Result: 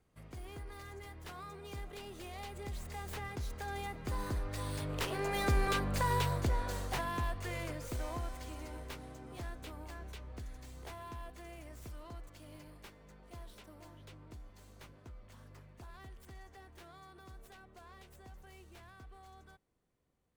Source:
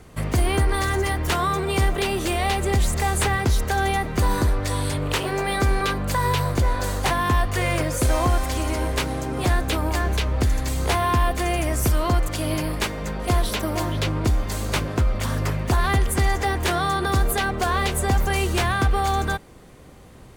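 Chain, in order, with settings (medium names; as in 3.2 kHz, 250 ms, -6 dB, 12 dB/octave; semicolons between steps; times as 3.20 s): tracing distortion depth 0.11 ms; Doppler pass-by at 5.81 s, 9 m/s, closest 6.4 m; trim -9 dB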